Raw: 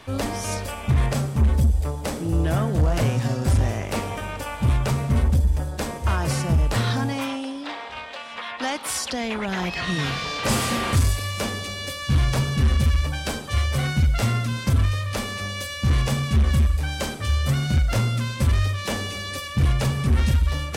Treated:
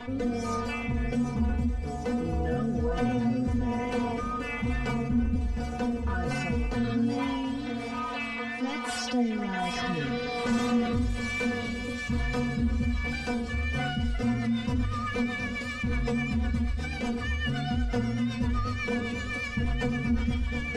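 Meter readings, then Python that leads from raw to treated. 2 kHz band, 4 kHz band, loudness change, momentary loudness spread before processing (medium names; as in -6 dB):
-3.0 dB, -8.5 dB, -6.0 dB, 8 LU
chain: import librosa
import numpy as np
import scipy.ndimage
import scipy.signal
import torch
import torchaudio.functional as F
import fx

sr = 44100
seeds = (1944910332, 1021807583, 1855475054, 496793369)

y = fx.air_absorb(x, sr, metres=72.0)
y = fx.stiff_resonator(y, sr, f0_hz=240.0, decay_s=0.23, stiffness=0.002)
y = fx.echo_wet_highpass(y, sr, ms=745, feedback_pct=76, hz=3600.0, wet_db=-8.0)
y = fx.rotary_switch(y, sr, hz=1.2, then_hz=8.0, switch_at_s=13.6)
y = fx.echo_heads(y, sr, ms=238, heads='first and third', feedback_pct=45, wet_db=-18.0)
y = fx.wow_flutter(y, sr, seeds[0], rate_hz=2.1, depth_cents=18.0)
y = fx.high_shelf(y, sr, hz=2100.0, db=-11.0)
y = fx.notch(y, sr, hz=590.0, q=12.0)
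y = fx.env_flatten(y, sr, amount_pct=50)
y = F.gain(torch.from_numpy(y), 8.0).numpy()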